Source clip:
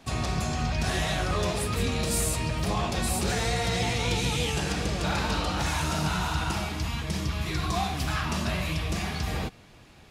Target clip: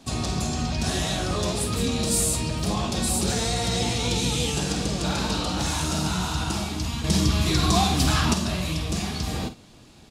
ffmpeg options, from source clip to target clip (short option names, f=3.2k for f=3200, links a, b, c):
-filter_complex "[0:a]equalizer=f=250:t=o:w=1:g=6,equalizer=f=2k:t=o:w=1:g=-5,equalizer=f=4k:t=o:w=1:g=4,equalizer=f=8k:t=o:w=1:g=6,asettb=1/sr,asplit=3[a][b][c];[a]atrim=end=7.044[d];[b]atrim=start=7.04:end=8.34,asetpts=PTS-STARTPTS,afade=t=in:d=0.004:c=qsin,afade=t=out:st=1.296:d=0.004:c=qsin,acontrast=58[e];[c]atrim=start=8.336[f];[d][e]acrossfade=d=0.004:c1=hsin:c2=qsin[g];[g][f]acrossfade=d=0.004:c1=qsin:c2=hsin,asplit=2[h][i];[i]adelay=49,volume=-10.5dB[j];[h][j]amix=inputs=2:normalize=0"